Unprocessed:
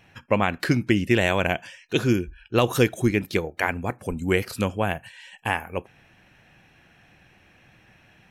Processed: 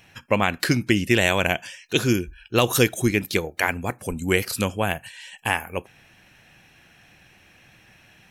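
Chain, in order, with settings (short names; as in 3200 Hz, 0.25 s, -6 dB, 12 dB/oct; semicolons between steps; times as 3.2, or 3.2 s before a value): high shelf 3300 Hz +10.5 dB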